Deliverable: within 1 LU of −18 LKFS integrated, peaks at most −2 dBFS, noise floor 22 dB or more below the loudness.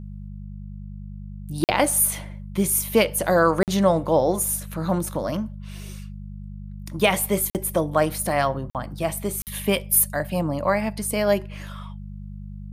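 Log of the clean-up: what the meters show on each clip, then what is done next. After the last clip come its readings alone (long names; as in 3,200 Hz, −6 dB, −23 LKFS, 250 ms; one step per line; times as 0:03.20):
number of dropouts 5; longest dropout 48 ms; mains hum 50 Hz; hum harmonics up to 200 Hz; level of the hum −33 dBFS; integrated loudness −22.5 LKFS; sample peak −5.5 dBFS; target loudness −18.0 LKFS
→ repair the gap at 0:01.64/0:03.63/0:07.50/0:08.70/0:09.42, 48 ms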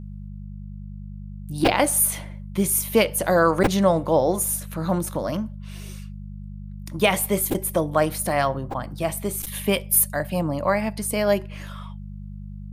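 number of dropouts 0; mains hum 50 Hz; hum harmonics up to 200 Hz; level of the hum −33 dBFS
→ hum removal 50 Hz, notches 4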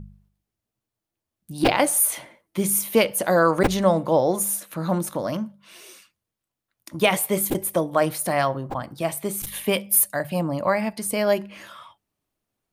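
mains hum none found; integrated loudness −22.5 LKFS; sample peak −5.5 dBFS; target loudness −18.0 LKFS
→ level +4.5 dB
brickwall limiter −2 dBFS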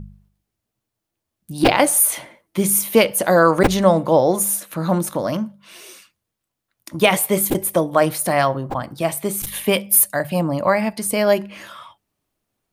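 integrated loudness −18.0 LKFS; sample peak −2.0 dBFS; background noise floor −81 dBFS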